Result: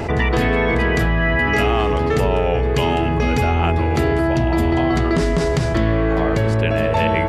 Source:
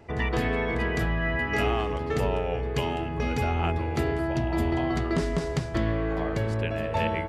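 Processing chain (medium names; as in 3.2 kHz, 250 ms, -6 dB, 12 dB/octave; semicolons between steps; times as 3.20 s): level flattener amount 70%; trim +6.5 dB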